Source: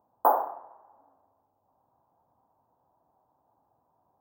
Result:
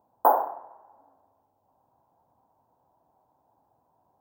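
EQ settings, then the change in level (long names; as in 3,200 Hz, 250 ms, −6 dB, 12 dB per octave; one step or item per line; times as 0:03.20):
notch filter 1,200 Hz, Q 11
+2.5 dB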